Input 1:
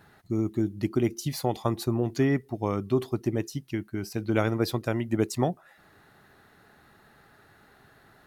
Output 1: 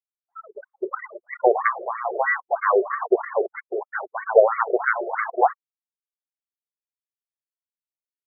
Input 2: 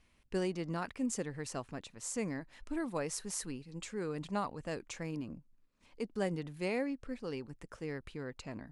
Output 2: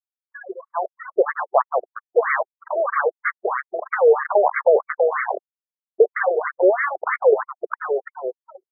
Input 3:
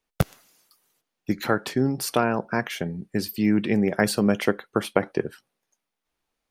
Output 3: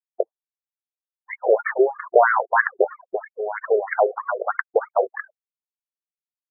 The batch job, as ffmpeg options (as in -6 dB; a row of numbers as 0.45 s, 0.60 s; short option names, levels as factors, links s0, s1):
-af "bandreject=f=60:t=h:w=6,bandreject=f=120:t=h:w=6,aresample=8000,acrusher=bits=6:mix=0:aa=0.000001,aresample=44100,dynaudnorm=f=240:g=11:m=5.96,aeval=exprs='0.944*sin(PI/2*2.24*val(0)/0.944)':c=same,anlmdn=15.8,afftfilt=real='re*gte(hypot(re,im),0.0891)':imag='im*gte(hypot(re,im),0.0891)':win_size=1024:overlap=0.75,alimiter=level_in=1.78:limit=0.891:release=50:level=0:latency=1,afftfilt=real='re*between(b*sr/1024,490*pow(1600/490,0.5+0.5*sin(2*PI*3.1*pts/sr))/1.41,490*pow(1600/490,0.5+0.5*sin(2*PI*3.1*pts/sr))*1.41)':imag='im*between(b*sr/1024,490*pow(1600/490,0.5+0.5*sin(2*PI*3.1*pts/sr))/1.41,490*pow(1600/490,0.5+0.5*sin(2*PI*3.1*pts/sr))*1.41)':win_size=1024:overlap=0.75"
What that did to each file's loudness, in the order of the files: +6.0 LU, +18.5 LU, +3.0 LU